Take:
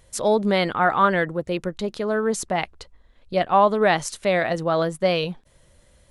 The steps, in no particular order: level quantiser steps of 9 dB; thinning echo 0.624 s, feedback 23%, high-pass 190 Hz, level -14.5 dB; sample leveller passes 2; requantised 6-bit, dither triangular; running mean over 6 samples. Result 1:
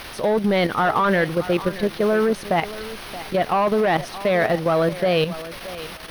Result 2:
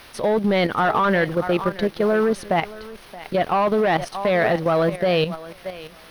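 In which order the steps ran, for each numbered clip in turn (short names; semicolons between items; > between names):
requantised > sample leveller > running mean > level quantiser > thinning echo; thinning echo > sample leveller > requantised > running mean > level quantiser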